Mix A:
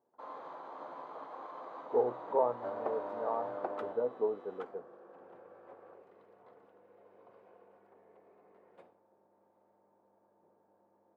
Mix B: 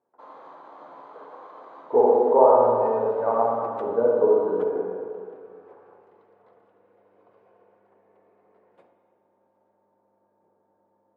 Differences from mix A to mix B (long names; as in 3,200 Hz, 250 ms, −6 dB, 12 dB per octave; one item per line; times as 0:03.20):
speech +8.0 dB
reverb: on, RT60 2.2 s